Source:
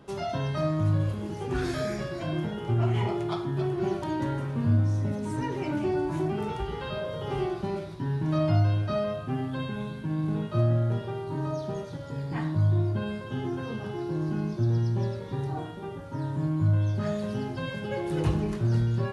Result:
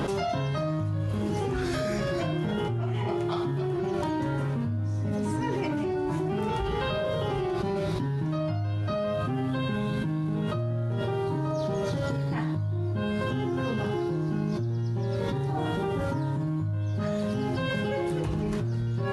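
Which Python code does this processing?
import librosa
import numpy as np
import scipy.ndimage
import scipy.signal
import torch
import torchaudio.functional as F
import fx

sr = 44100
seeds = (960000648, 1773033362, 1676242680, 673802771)

y = fx.env_flatten(x, sr, amount_pct=100)
y = y * librosa.db_to_amplitude(-8.5)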